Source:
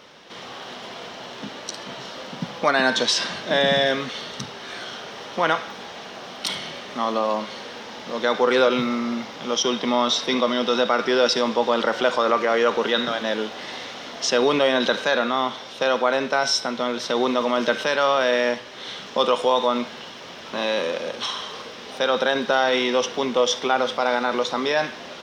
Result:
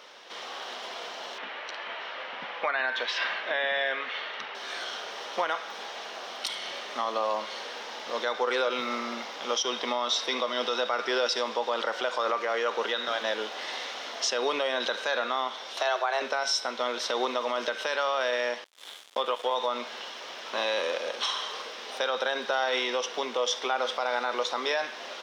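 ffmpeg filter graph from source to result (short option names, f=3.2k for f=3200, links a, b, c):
-filter_complex "[0:a]asettb=1/sr,asplit=3[a][b][c];[a]atrim=end=1.384[d];[b]atrim=start=1.38:end=4.55,asetpts=PTS-STARTPTS,afade=t=in:d=0.004:c=qsin,afade=t=out:st=3.166:d=0.004:c=qsin,lowpass=f=2.3k:t=q:w=1.7,lowshelf=f=310:g=-10[e];[c]atrim=start=4.546[f];[d][e]acrossfade=d=0.004:c1=hsin:c2=qsin[g];[g][f]acrossfade=d=0.004:c1=qsin:c2=hsin,asettb=1/sr,asplit=3[h][i][j];[h]atrim=end=15.774[k];[i]atrim=start=15.77:end=16.22,asetpts=PTS-STARTPTS,afade=t=in:d=0.004:c=qsin,afade=t=out:st=0.446:d=0.004:c=qsin,afreqshift=140,acompressor=mode=upward:threshold=-26dB:ratio=2.5:attack=3.2:release=140:knee=2.83:detection=peak[l];[j]atrim=start=16.216[m];[k][l]acrossfade=d=0.004:c1=hsin:c2=qsin[n];[n][m]acrossfade=d=0.004:c1=qsin:c2=hsin,asettb=1/sr,asplit=3[o][p][q];[o]atrim=end=18.644[r];[p]atrim=start=18.64:end=19.55,asetpts=PTS-STARTPTS,afade=t=in:d=0.004:c=qsin,afade=t=out:st=0.906:d=0.004:c=qsin,aeval=exprs='sgn(val(0))*max(abs(val(0))-0.0224,0)':c=same,acrossover=split=2800[s][t];[t]acompressor=threshold=-42dB:ratio=4:attack=1:release=60[u];[s][u]amix=inputs=2:normalize=0,equalizer=f=3.4k:w=4.2:g=6.5[v];[q]atrim=start=19.546[w];[r][v]acrossfade=d=0.004:c1=hsin:c2=qsin[x];[x][w]acrossfade=d=0.004:c1=qsin:c2=hsin,highpass=490,alimiter=limit=-16dB:level=0:latency=1:release=257,volume=-1dB"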